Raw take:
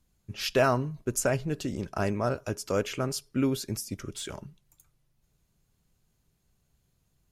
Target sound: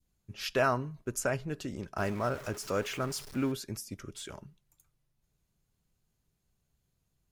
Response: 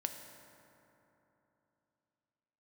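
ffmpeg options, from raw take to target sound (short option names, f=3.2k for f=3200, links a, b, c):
-filter_complex "[0:a]asettb=1/sr,asplit=3[a][b][c];[a]atrim=end=1.984[d];[b]atrim=start=1.98:end=3.52,asetpts=PTS-STARTPTS,afade=t=in:d=0.004:c=qsin,afade=t=out:st=1.536:d=0.004:c=qsin,aeval=exprs='val(0)+0.5*0.015*sgn(val(0))':c=same[e];[c]atrim=start=3.516[f];[d][e]acrossfade=d=0.004:c1=hsin:c2=qsin[g];[g][f]acrossfade=d=0.004:c1=qsin:c2=hsin,adynamicequalizer=threshold=0.00708:dfrequency=1400:dqfactor=0.86:tfrequency=1400:tqfactor=0.86:attack=5:release=100:ratio=0.375:range=2.5:mode=boostabove:tftype=bell,volume=-6dB"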